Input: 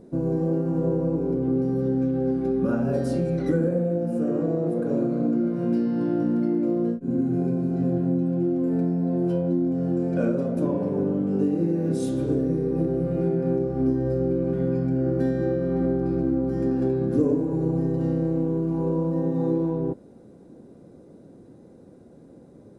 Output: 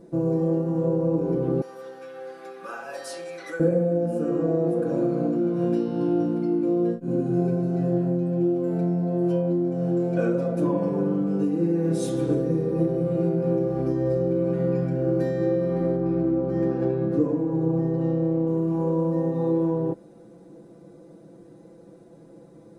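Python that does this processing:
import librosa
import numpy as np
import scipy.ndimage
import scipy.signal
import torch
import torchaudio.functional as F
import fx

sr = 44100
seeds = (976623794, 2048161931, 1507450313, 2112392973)

y = fx.highpass(x, sr, hz=1100.0, slope=12, at=(1.61, 3.6))
y = fx.lowpass(y, sr, hz=2500.0, slope=6, at=(15.96, 18.47))
y = fx.low_shelf(y, sr, hz=250.0, db=-6.5)
y = y + 0.89 * np.pad(y, (int(6.0 * sr / 1000.0), 0))[:len(y)]
y = fx.rider(y, sr, range_db=10, speed_s=0.5)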